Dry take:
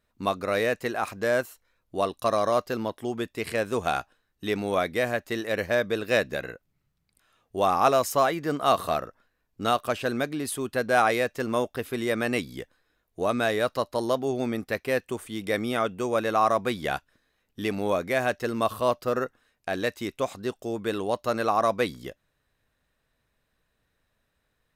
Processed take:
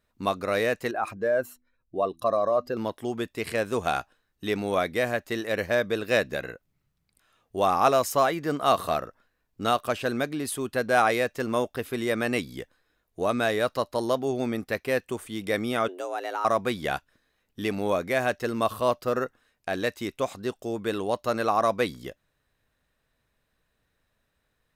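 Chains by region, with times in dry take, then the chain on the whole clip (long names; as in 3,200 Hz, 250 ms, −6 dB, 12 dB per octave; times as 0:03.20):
0:00.91–0:02.77: expanding power law on the bin magnitudes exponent 1.5 + hum removal 82.33 Hz, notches 4
0:15.88–0:16.45: downward compressor 2 to 1, threshold −33 dBFS + frequency shifter +180 Hz
whole clip: no processing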